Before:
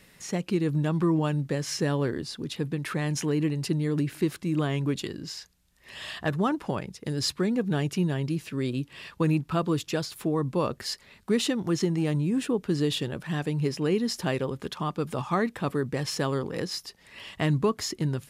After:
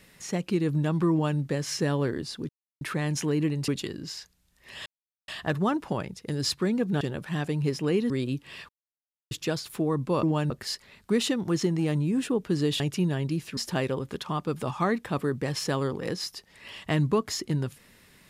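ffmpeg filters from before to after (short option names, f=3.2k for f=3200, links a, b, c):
-filter_complex "[0:a]asplit=13[a][b][c][d][e][f][g][h][i][j][k][l][m];[a]atrim=end=2.49,asetpts=PTS-STARTPTS,afade=t=out:st=2.486:d=0.004:c=hsin[n];[b]atrim=start=2.49:end=2.81,asetpts=PTS-STARTPTS,volume=0[o];[c]atrim=start=2.81:end=3.682,asetpts=PTS-STARTPTS,afade=t=in:d=0.004:c=hsin[p];[d]atrim=start=4.878:end=6.06,asetpts=PTS-STARTPTS,afade=t=out:st=1.178:d=0.004:c=hsin,apad=pad_dur=0.42[q];[e]atrim=start=6.06:end=7.792,asetpts=PTS-STARTPTS,afade=t=in:d=0.004:c=hsin[r];[f]atrim=start=12.988:end=14.082[s];[g]atrim=start=8.558:end=9.15,asetpts=PTS-STARTPTS,afade=t=out:st=0.588:d=0.004:c=hsin[t];[h]atrim=start=9.15:end=9.77,asetpts=PTS-STARTPTS,volume=0[u];[i]atrim=start=9.77:end=10.692,asetpts=PTS-STARTPTS,afade=t=in:d=0.004:c=hsin[v];[j]atrim=start=1.108:end=1.382[w];[k]atrim=start=10.688:end=12.992[x];[l]atrim=start=7.788:end=8.562[y];[m]atrim=start=14.078[z];[n][o][p]concat=n=3:v=0:a=1[aa];[q][r]concat=n=2:v=0:a=1[ab];[aa][ab]acrossfade=d=0.004:c1=hsin:c2=hsin[ac];[ac][s]acrossfade=d=0.004:c1=hsin:c2=hsin[ad];[t][u][v]concat=n=3:v=0:a=1[ae];[ad][ae]acrossfade=d=0.004:c1=hsin:c2=hsin[af];[af][w]acrossfade=d=0.004:c1=hsin:c2=hsin[ag];[ag][x]acrossfade=d=0.004:c1=hsin:c2=hsin[ah];[ah][y]acrossfade=d=0.004:c1=hsin:c2=hsin[ai];[ai][z]acrossfade=d=0.004:c1=hsin:c2=hsin"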